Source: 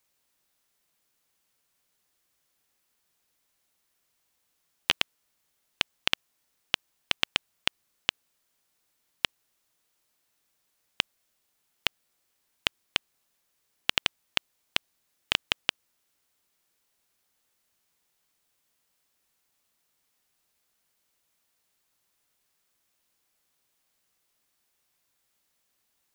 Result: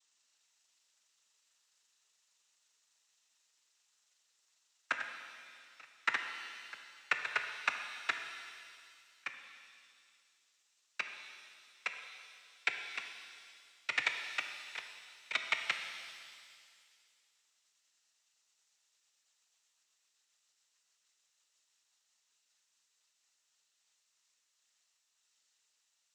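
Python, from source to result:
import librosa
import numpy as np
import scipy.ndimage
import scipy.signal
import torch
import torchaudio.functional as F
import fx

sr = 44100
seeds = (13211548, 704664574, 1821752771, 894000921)

y = fx.pitch_glide(x, sr, semitones=-12.0, runs='ending unshifted')
y = fx.highpass(y, sr, hz=1000.0, slope=6)
y = y + 0.65 * np.pad(y, (int(7.1 * sr / 1000.0), 0))[:len(y)]
y = fx.noise_vocoder(y, sr, seeds[0], bands=12)
y = fx.rev_shimmer(y, sr, seeds[1], rt60_s=2.1, semitones=7, shimmer_db=-8, drr_db=5.0)
y = y * 10.0 ** (-6.5 / 20.0)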